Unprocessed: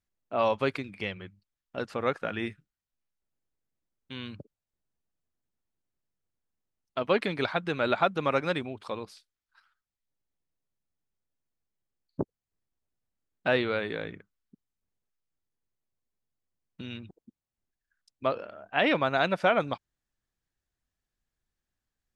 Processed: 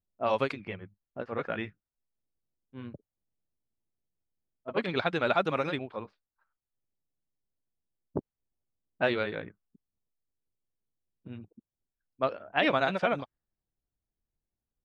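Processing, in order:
time stretch by overlap-add 0.67×, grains 169 ms
low-pass that shuts in the quiet parts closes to 700 Hz, open at −23 dBFS

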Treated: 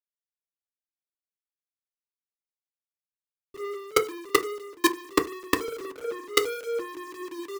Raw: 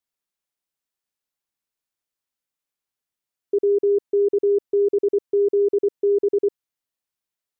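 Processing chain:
feedback delay that plays each chunk backwards 223 ms, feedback 71%, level −11 dB
on a send: multi-tap delay 47/54/109/134/664/751 ms −9/−6/−14/−10.5/−5/−6 dB
on the sum: gate on every frequency bin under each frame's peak −25 dB strong
Bessel low-pass filter 520 Hz, order 6
granular cloud 192 ms, grains 5.9 per second, spray 16 ms, pitch spread up and down by 3 semitones
log-companded quantiser 2 bits
speech leveller within 5 dB 0.5 s
feedback delay network reverb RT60 0.32 s, low-frequency decay 0.9×, high-frequency decay 0.45×, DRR 6.5 dB
multiband upward and downward expander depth 100%
level −9 dB

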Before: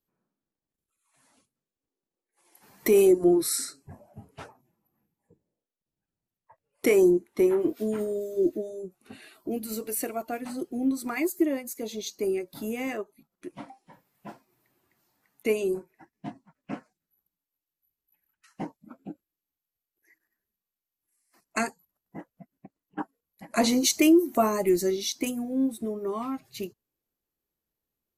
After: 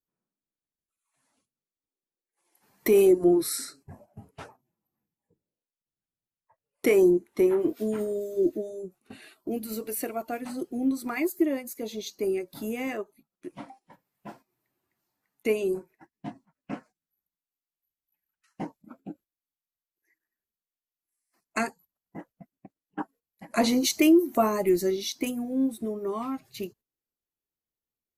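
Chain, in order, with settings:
noise gate −52 dBFS, range −9 dB
dynamic equaliser 7,500 Hz, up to −5 dB, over −48 dBFS, Q 1.1

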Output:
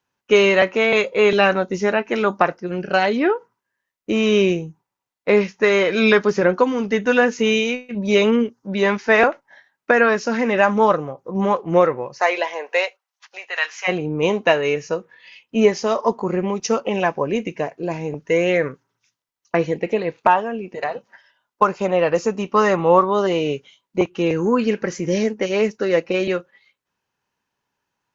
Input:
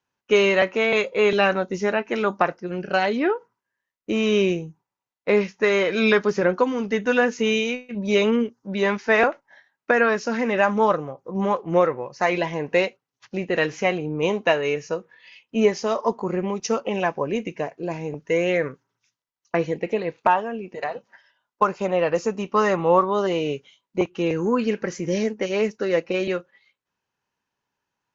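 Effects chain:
0:12.18–0:13.87: high-pass filter 410 Hz → 1,000 Hz 24 dB per octave
level +3.5 dB

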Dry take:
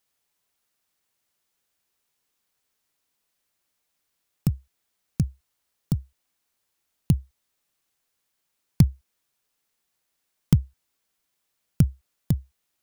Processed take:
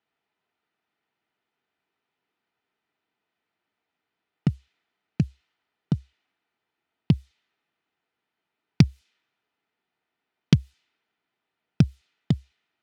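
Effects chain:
meter weighting curve D
low-pass that shuts in the quiet parts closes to 1,100 Hz, open at −24 dBFS
notch comb filter 550 Hz
level +5.5 dB

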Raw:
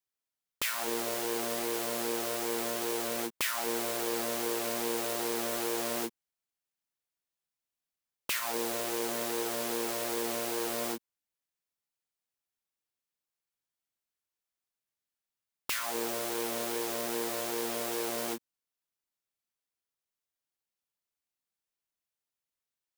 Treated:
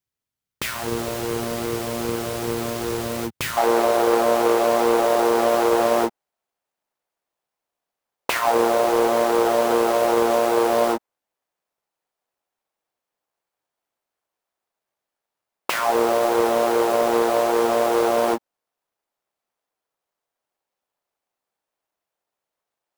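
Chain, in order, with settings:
each half-wave held at its own peak
parametric band 88 Hz +14 dB 2.3 octaves, from 0:03.57 690 Hz

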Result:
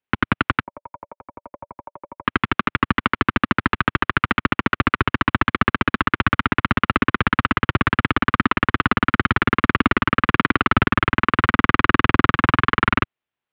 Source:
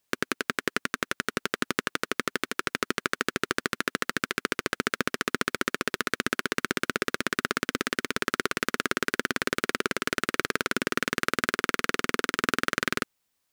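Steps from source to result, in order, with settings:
transient designer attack −5 dB, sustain +2 dB
leveller curve on the samples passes 5
0:00.63–0:02.25: formant resonators in series a
single-sideband voice off tune −150 Hz 220–3,400 Hz
level +3 dB

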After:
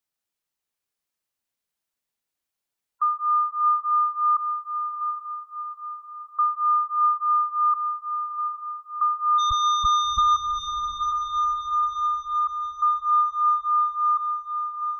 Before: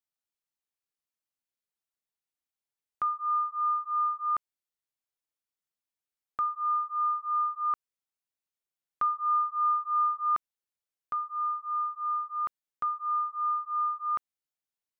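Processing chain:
0:09.38–0:10.23: comparator with hysteresis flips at −50.5 dBFS
gate on every frequency bin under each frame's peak −15 dB strong
feedback delay with all-pass diffusion 731 ms, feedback 50%, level −7 dB
level +6.5 dB

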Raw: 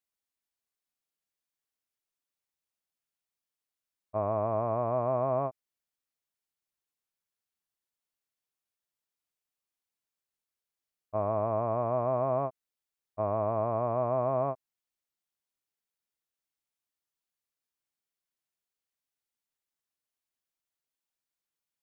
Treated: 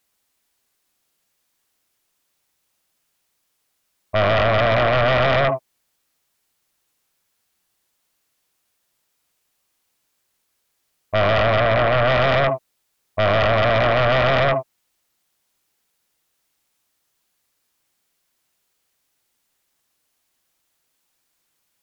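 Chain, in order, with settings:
0:11.58–0:12.10: low-pass filter 1,800 Hz 6 dB per octave
reverb whose tail is shaped and stops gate 90 ms rising, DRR 9.5 dB
sine wavefolder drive 15 dB, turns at −14 dBFS

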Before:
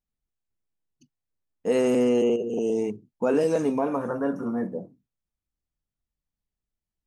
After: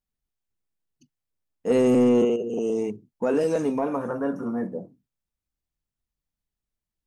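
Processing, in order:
0:01.70–0:02.25: low-shelf EQ 280 Hz +10.5 dB
soft clipping −10.5 dBFS, distortion −22 dB

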